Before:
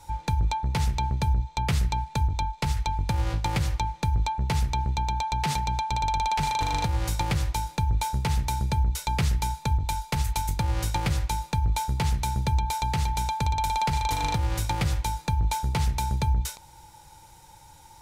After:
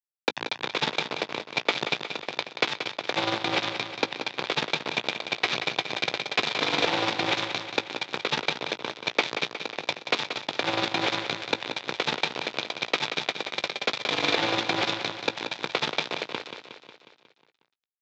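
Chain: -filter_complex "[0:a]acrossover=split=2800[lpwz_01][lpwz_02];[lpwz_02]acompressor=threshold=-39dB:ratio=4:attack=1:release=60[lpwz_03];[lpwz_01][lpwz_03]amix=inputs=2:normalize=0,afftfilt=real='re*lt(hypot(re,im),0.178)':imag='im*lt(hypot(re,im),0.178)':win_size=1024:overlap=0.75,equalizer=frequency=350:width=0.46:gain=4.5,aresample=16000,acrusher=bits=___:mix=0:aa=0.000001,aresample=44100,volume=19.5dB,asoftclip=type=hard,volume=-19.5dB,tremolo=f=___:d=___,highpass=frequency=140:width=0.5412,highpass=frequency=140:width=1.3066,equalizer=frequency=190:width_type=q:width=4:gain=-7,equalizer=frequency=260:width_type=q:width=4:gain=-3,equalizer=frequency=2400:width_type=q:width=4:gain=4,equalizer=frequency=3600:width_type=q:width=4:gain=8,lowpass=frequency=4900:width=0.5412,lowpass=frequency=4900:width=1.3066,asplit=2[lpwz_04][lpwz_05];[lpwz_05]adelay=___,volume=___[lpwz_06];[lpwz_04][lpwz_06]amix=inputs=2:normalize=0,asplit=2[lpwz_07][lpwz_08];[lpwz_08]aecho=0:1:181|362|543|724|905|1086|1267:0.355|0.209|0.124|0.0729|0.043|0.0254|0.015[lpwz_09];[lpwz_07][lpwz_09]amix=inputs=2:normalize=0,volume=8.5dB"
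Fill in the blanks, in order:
4, 20, 0.667, 18, -14dB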